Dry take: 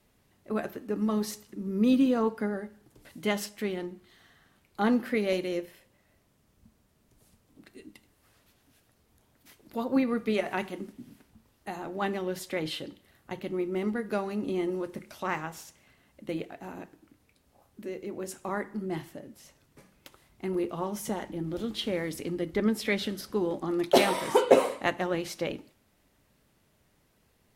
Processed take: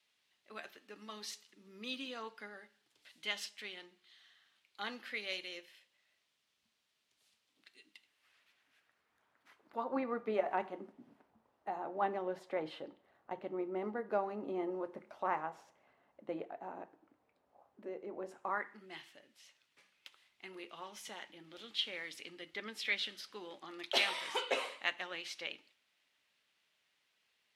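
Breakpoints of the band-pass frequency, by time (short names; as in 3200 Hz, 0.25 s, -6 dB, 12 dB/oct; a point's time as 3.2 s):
band-pass, Q 1.4
7.82 s 3400 Hz
10.35 s 770 Hz
18.34 s 770 Hz
18.89 s 3000 Hz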